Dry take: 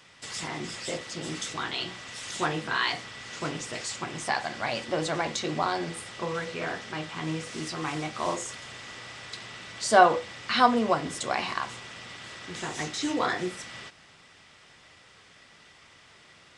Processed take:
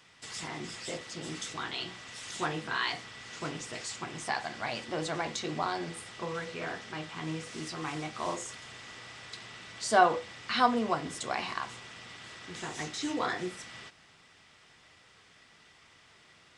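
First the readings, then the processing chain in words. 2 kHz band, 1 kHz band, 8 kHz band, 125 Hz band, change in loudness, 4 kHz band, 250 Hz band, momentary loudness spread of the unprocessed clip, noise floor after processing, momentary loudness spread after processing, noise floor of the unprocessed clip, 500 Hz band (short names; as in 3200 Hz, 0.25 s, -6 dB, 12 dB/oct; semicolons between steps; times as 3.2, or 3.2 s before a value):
-4.5 dB, -4.5 dB, -4.5 dB, -4.5 dB, -4.5 dB, -4.5 dB, -4.5 dB, 17 LU, -60 dBFS, 17 LU, -55 dBFS, -5.5 dB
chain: notch 560 Hz, Q 15; gain -4.5 dB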